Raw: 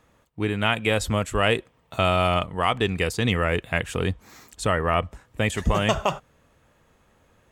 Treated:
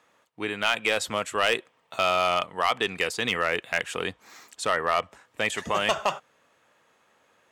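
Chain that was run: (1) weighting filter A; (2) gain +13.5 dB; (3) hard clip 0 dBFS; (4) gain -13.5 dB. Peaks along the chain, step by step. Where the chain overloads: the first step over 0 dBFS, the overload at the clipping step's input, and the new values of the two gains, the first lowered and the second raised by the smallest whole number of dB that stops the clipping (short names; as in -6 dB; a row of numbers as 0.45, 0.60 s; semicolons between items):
-5.5, +8.0, 0.0, -13.5 dBFS; step 2, 8.0 dB; step 2 +5.5 dB, step 4 -5.5 dB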